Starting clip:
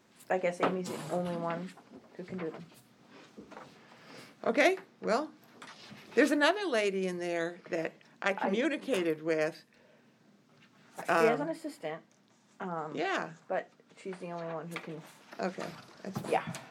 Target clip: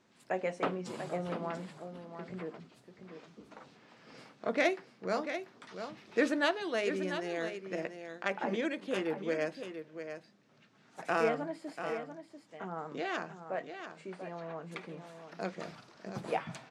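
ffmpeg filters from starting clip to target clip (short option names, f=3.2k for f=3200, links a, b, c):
-filter_complex "[0:a]lowpass=7.6k,asplit=2[a][b];[b]aecho=0:1:690:0.355[c];[a][c]amix=inputs=2:normalize=0,volume=-3.5dB"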